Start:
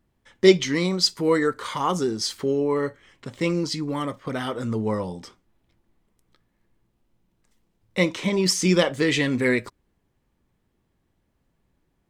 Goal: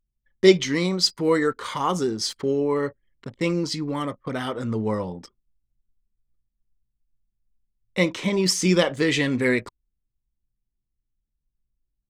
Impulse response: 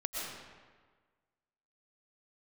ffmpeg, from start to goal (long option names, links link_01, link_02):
-af "anlmdn=0.251"